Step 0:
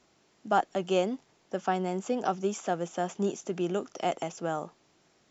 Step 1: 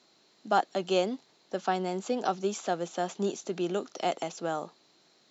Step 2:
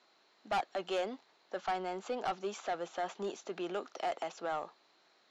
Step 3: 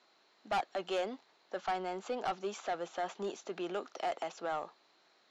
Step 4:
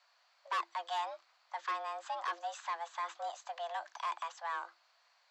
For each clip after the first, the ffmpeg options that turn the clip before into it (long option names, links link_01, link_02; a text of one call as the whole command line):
ffmpeg -i in.wav -af "highpass=180,equalizer=frequency=4100:width_type=o:width=0.3:gain=14" out.wav
ffmpeg -i in.wav -af "bandpass=frequency=1300:width_type=q:width=0.69:csg=0,asoftclip=type=tanh:threshold=-29dB,volume=1dB" out.wav
ffmpeg -i in.wav -af anull out.wav
ffmpeg -i in.wav -af "afreqshift=340,volume=-2dB" out.wav